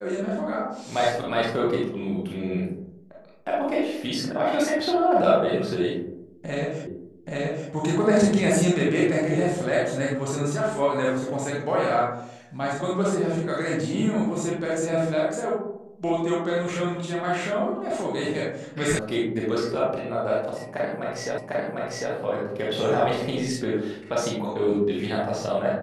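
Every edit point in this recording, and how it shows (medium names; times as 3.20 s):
6.87 s: repeat of the last 0.83 s
18.99 s: sound stops dead
21.38 s: repeat of the last 0.75 s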